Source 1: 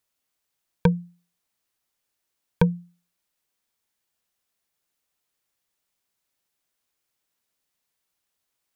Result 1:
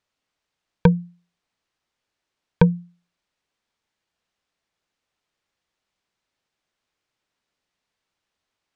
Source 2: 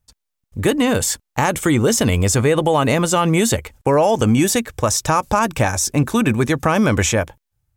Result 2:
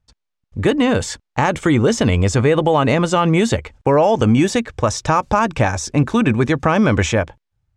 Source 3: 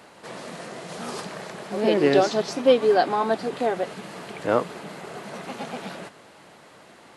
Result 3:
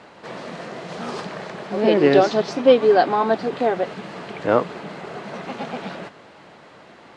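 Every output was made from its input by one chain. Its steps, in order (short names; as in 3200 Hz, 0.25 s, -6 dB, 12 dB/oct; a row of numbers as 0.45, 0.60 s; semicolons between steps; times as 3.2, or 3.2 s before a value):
air absorption 110 m; normalise peaks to -2 dBFS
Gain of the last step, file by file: +4.5, +1.5, +4.0 dB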